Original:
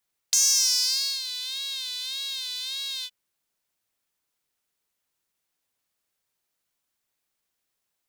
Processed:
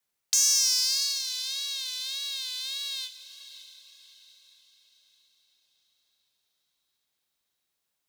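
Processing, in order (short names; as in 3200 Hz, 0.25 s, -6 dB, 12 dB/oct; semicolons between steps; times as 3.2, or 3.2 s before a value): frequency shift +31 Hz; diffused feedback echo 0.607 s, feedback 45%, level -13.5 dB; gain -1.5 dB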